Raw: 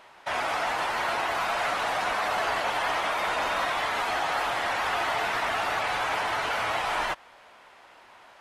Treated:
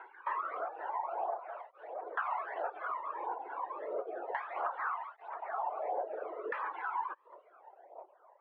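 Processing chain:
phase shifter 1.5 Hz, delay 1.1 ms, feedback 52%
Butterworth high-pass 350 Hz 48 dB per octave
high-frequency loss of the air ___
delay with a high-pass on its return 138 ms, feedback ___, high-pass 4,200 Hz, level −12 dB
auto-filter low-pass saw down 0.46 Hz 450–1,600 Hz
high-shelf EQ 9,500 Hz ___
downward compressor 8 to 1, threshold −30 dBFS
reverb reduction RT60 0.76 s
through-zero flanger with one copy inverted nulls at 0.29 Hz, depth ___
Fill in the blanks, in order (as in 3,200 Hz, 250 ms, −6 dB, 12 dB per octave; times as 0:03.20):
230 metres, 55%, −9 dB, 1.7 ms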